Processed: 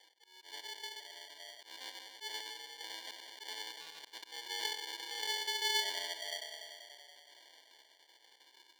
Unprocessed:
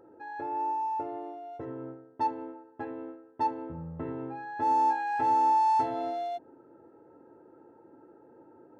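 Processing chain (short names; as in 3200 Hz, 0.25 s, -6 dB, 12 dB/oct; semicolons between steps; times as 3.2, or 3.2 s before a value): random spectral dropouts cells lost 37%; limiter -25.5 dBFS, peak gain reduction 7 dB; 0.61–1.29 compressor 2:1, threshold -49 dBFS, peak gain reduction 10.5 dB; 4.42–5.37 flutter echo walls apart 7.2 m, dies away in 0.5 s; rotary speaker horn 0.85 Hz; tilt +2 dB/oct; tape echo 95 ms, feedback 90%, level -6.5 dB, low-pass 2000 Hz; auto swell 0.141 s; sample-and-hold 34×; HPF 910 Hz 12 dB/oct; bell 3900 Hz +14.5 dB 1.2 oct; 3.04–3.75 three-band squash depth 40%; gain -2.5 dB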